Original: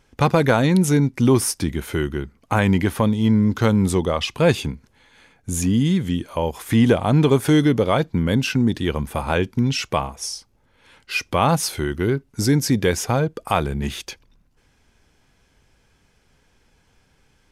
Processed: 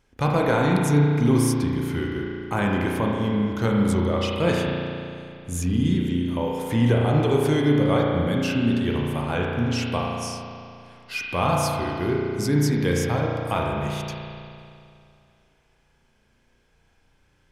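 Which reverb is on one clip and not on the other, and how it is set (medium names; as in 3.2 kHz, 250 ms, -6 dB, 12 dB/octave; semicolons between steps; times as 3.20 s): spring tank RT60 2.5 s, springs 34 ms, chirp 40 ms, DRR -2 dB; trim -7 dB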